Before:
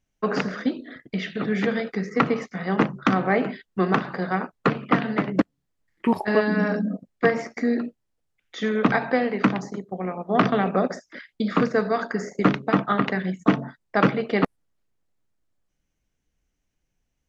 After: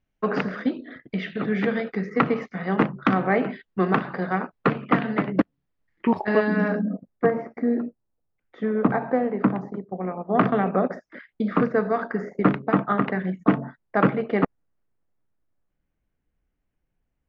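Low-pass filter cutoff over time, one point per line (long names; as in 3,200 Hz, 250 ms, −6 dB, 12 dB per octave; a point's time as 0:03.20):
0:06.67 3,100 Hz
0:06.84 1,700 Hz
0:07.33 1,100 Hz
0:09.40 1,100 Hz
0:10.34 1,900 Hz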